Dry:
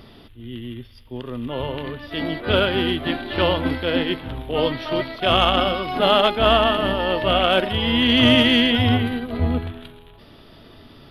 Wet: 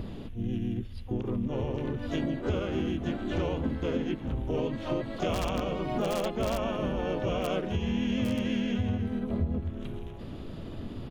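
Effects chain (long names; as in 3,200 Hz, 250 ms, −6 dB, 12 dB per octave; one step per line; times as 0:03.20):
wrap-around overflow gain 4.5 dB
pitch-shifted copies added −3 semitones −2 dB, +12 semitones −14 dB
tilt shelving filter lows +7.5 dB, about 640 Hz
downward compressor 6 to 1, threshold −28 dBFS, peak gain reduction 21.5 dB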